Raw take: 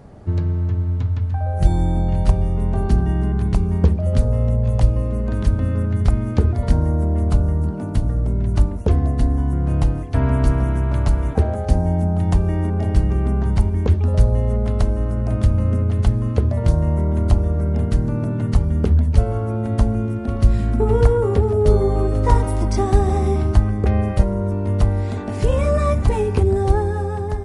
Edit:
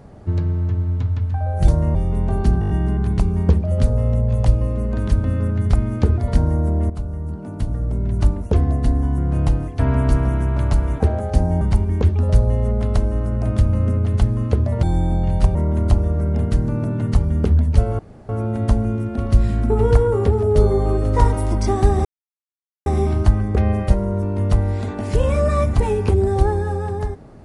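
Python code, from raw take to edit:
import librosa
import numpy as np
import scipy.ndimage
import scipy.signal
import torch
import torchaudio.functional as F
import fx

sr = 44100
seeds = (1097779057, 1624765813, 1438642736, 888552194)

y = fx.edit(x, sr, fx.swap(start_s=1.68, length_s=0.72, other_s=16.68, other_length_s=0.27),
    fx.stutter(start_s=3.05, slice_s=0.02, count=6),
    fx.fade_in_from(start_s=7.25, length_s=1.4, floor_db=-12.0),
    fx.cut(start_s=11.96, length_s=1.5),
    fx.insert_room_tone(at_s=19.39, length_s=0.3),
    fx.insert_silence(at_s=23.15, length_s=0.81), tone=tone)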